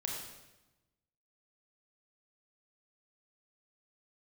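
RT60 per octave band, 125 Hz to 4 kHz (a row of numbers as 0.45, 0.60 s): 1.4, 1.3, 1.1, 1.0, 0.95, 0.90 s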